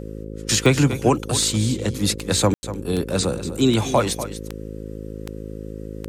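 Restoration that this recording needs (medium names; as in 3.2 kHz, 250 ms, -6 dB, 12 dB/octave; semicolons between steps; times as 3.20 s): de-click; de-hum 53.3 Hz, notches 10; room tone fill 2.54–2.63 s; inverse comb 244 ms -12.5 dB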